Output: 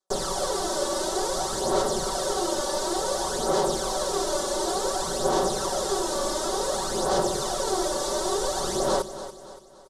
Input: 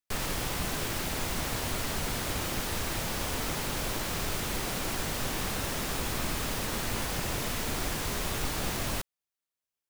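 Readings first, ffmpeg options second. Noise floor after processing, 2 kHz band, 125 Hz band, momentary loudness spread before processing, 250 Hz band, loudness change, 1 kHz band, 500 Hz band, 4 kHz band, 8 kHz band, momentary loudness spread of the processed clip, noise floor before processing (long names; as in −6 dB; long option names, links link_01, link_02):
−44 dBFS, −2.5 dB, −5.0 dB, 0 LU, +5.0 dB, +5.5 dB, +9.5 dB, +13.5 dB, +4.0 dB, +6.0 dB, 3 LU, below −85 dBFS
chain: -af "firequalizer=gain_entry='entry(220,0);entry(380,13);entry(550,14);entry(1300,6);entry(2400,-14);entry(3500,5);entry(5700,8)':delay=0.05:min_phase=1,aphaser=in_gain=1:out_gain=1:delay=3.5:decay=0.55:speed=0.56:type=sinusoidal,lowpass=frequency=9500:width=0.5412,lowpass=frequency=9500:width=1.3066,lowshelf=frequency=84:gain=-8,bandreject=frequency=50:width_type=h:width=6,bandreject=frequency=100:width_type=h:width=6,bandreject=frequency=150:width_type=h:width=6,bandreject=frequency=200:width_type=h:width=6,aecho=1:1:5.3:0.99,aecho=1:1:285|570|855|1140:0.224|0.0985|0.0433|0.0191,volume=-5.5dB"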